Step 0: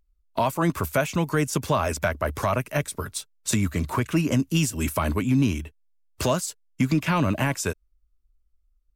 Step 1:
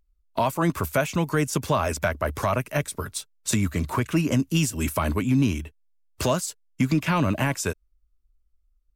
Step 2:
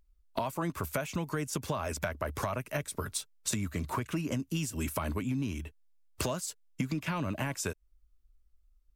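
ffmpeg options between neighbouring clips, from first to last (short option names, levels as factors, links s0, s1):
-af anull
-af "acompressor=threshold=0.0251:ratio=5,volume=1.12"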